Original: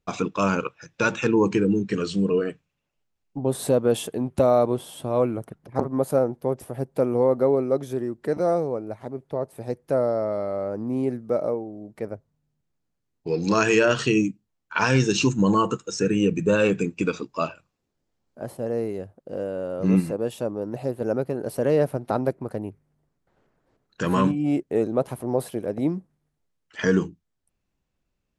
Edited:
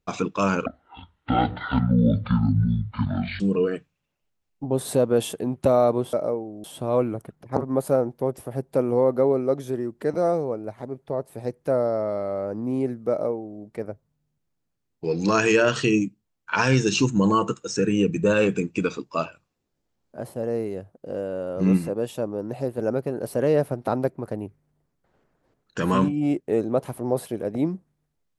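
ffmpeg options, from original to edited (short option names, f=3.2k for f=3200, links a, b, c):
-filter_complex "[0:a]asplit=5[a][b][c][d][e];[a]atrim=end=0.664[f];[b]atrim=start=0.66:end=2.14,asetpts=PTS-STARTPTS,asetrate=23814,aresample=44100[g];[c]atrim=start=2.136:end=4.872[h];[d]atrim=start=11.328:end=11.842[i];[e]atrim=start=4.868[j];[f][g]acrossfade=d=0.004:c1=hsin:c2=hsin[k];[k][h]acrossfade=d=0.004:c1=hsin:c2=hsin[l];[l][i]acrossfade=d=0.004:c1=hsin:c2=hsin[m];[m][j]acrossfade=d=0.004:c1=hsin:c2=hsin"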